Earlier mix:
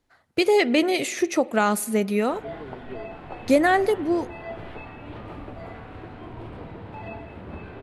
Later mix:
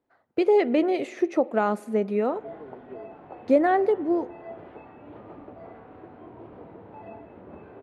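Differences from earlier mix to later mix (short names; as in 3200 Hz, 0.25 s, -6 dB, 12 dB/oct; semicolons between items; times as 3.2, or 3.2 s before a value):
background: send off; master: add band-pass 480 Hz, Q 0.69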